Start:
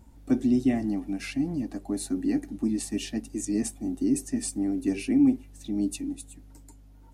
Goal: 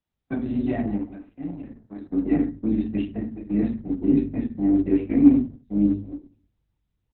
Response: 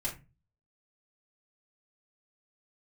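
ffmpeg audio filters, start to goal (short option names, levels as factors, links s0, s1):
-filter_complex "[0:a]aemphasis=mode=reproduction:type=bsi,agate=range=0.0158:threshold=0.0631:ratio=16:detection=peak,asetnsamples=n=441:p=0,asendcmd='0.99 highpass f 1200;2.08 highpass f 260',highpass=f=580:p=1,highshelf=f=3500:g=-6,asplit=2[s0][s1];[s1]adelay=13,volume=0.355[s2];[s0][s2]amix=inputs=2:normalize=0,asplit=2[s3][s4];[s4]adelay=77,lowpass=f=1800:p=1,volume=0.0841,asplit=2[s5][s6];[s6]adelay=77,lowpass=f=1800:p=1,volume=0.18[s7];[s3][s5][s7]amix=inputs=3:normalize=0[s8];[1:a]atrim=start_sample=2205,afade=t=out:st=0.32:d=0.01,atrim=end_sample=14553,asetrate=33516,aresample=44100[s9];[s8][s9]afir=irnorm=-1:irlink=0" -ar 48000 -c:a libopus -b:a 6k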